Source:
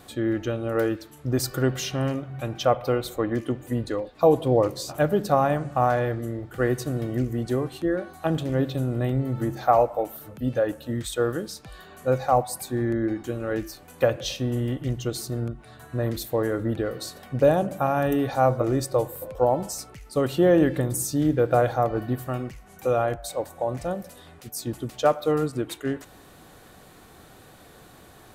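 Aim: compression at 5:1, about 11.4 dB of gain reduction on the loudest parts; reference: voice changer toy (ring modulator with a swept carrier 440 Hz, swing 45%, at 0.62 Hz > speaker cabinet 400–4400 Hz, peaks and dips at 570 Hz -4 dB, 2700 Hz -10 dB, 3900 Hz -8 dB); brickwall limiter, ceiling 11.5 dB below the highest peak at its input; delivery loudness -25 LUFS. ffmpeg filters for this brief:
-af "acompressor=threshold=-27dB:ratio=5,alimiter=level_in=1dB:limit=-24dB:level=0:latency=1,volume=-1dB,aeval=exprs='val(0)*sin(2*PI*440*n/s+440*0.45/0.62*sin(2*PI*0.62*n/s))':c=same,highpass=400,equalizer=f=570:t=q:w=4:g=-4,equalizer=f=2.7k:t=q:w=4:g=-10,equalizer=f=3.9k:t=q:w=4:g=-8,lowpass=f=4.4k:w=0.5412,lowpass=f=4.4k:w=1.3066,volume=16.5dB"

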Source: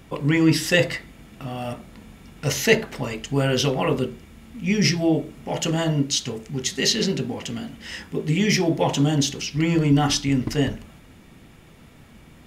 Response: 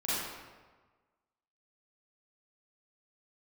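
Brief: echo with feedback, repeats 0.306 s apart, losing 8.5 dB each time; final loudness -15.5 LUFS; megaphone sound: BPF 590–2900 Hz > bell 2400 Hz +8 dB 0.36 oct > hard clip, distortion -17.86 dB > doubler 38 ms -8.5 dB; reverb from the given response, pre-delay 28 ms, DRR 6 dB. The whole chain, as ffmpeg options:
-filter_complex "[0:a]aecho=1:1:306|612|918|1224:0.376|0.143|0.0543|0.0206,asplit=2[a][b];[1:a]atrim=start_sample=2205,adelay=28[c];[b][c]afir=irnorm=-1:irlink=0,volume=-13.5dB[d];[a][d]amix=inputs=2:normalize=0,highpass=590,lowpass=2.9k,equalizer=f=2.4k:t=o:w=0.36:g=8,asoftclip=type=hard:threshold=-13.5dB,asplit=2[e][f];[f]adelay=38,volume=-8.5dB[g];[e][g]amix=inputs=2:normalize=0,volume=10.5dB"

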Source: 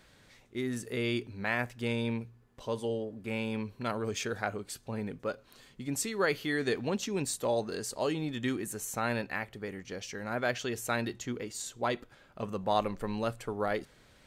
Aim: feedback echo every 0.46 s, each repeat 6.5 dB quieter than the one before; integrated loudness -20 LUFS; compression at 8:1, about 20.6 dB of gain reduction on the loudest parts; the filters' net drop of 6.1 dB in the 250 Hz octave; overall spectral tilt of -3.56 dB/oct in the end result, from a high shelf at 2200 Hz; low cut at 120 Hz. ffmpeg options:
-af "highpass=120,equalizer=f=250:t=o:g=-7.5,highshelf=f=2.2k:g=7.5,acompressor=threshold=-45dB:ratio=8,aecho=1:1:460|920|1380|1840|2300|2760:0.473|0.222|0.105|0.0491|0.0231|0.0109,volume=27dB"

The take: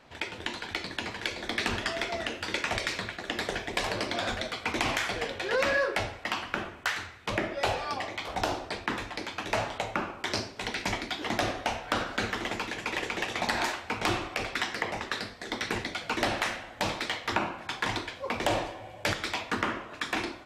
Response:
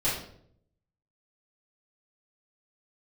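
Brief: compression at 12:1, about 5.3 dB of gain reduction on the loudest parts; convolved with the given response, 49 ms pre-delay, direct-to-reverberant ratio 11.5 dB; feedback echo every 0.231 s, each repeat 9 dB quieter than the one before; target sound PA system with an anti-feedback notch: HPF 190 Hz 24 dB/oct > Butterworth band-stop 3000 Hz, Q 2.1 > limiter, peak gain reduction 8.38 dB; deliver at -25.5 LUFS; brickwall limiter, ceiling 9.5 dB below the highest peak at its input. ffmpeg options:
-filter_complex "[0:a]acompressor=threshold=-30dB:ratio=12,alimiter=level_in=0.5dB:limit=-24dB:level=0:latency=1,volume=-0.5dB,aecho=1:1:231|462|693|924:0.355|0.124|0.0435|0.0152,asplit=2[a][b];[1:a]atrim=start_sample=2205,adelay=49[c];[b][c]afir=irnorm=-1:irlink=0,volume=-21.5dB[d];[a][d]amix=inputs=2:normalize=0,highpass=f=190:w=0.5412,highpass=f=190:w=1.3066,asuperstop=centerf=3000:order=8:qfactor=2.1,volume=14.5dB,alimiter=limit=-16dB:level=0:latency=1"

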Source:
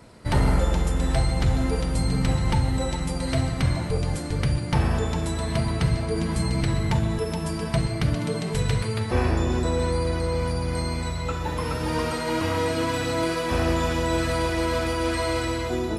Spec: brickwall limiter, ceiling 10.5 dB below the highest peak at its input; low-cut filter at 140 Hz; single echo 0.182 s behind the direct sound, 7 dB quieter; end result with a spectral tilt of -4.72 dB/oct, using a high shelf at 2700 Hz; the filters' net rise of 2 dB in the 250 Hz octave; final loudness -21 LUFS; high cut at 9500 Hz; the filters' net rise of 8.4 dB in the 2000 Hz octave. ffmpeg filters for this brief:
-af "highpass=140,lowpass=9.5k,equalizer=f=250:t=o:g=3.5,equalizer=f=2k:t=o:g=8,highshelf=f=2.7k:g=5,alimiter=limit=-18.5dB:level=0:latency=1,aecho=1:1:182:0.447,volume=5dB"

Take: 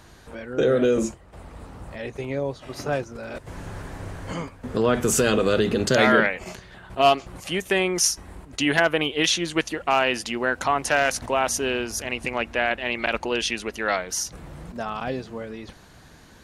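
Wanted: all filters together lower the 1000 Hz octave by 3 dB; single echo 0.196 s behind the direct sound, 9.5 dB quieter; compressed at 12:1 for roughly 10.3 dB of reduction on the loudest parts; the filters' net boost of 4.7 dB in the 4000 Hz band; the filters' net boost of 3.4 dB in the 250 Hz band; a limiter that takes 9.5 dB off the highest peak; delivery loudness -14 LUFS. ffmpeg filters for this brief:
-af "equalizer=f=250:t=o:g=4.5,equalizer=f=1k:t=o:g=-5.5,equalizer=f=4k:t=o:g=7,acompressor=threshold=-23dB:ratio=12,alimiter=limit=-19.5dB:level=0:latency=1,aecho=1:1:196:0.335,volume=17dB"

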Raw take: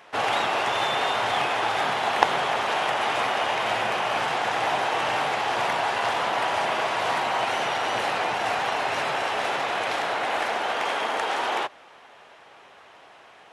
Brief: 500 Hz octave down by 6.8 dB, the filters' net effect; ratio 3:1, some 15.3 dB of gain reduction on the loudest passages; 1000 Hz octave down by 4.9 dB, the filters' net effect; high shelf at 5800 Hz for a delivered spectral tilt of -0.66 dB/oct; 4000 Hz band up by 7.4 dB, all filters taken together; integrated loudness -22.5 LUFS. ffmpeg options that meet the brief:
-af "equalizer=f=500:t=o:g=-8,equalizer=f=1k:t=o:g=-4,equalizer=f=4k:t=o:g=9,highshelf=f=5.8k:g=4,acompressor=threshold=-38dB:ratio=3,volume=12.5dB"

